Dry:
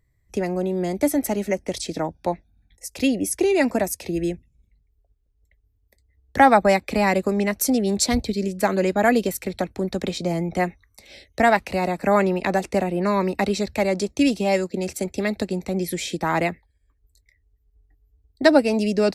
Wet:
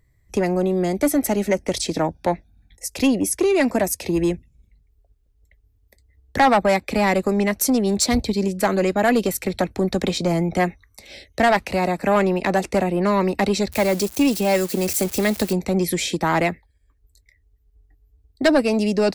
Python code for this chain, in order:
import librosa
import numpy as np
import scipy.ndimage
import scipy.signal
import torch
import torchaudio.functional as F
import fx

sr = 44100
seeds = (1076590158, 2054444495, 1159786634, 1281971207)

p1 = fx.crossing_spikes(x, sr, level_db=-25.0, at=(13.72, 15.53))
p2 = fx.rider(p1, sr, range_db=4, speed_s=0.5)
p3 = p1 + F.gain(torch.from_numpy(p2), 0.5).numpy()
p4 = 10.0 ** (-7.0 / 20.0) * np.tanh(p3 / 10.0 ** (-7.0 / 20.0))
y = F.gain(torch.from_numpy(p4), -3.0).numpy()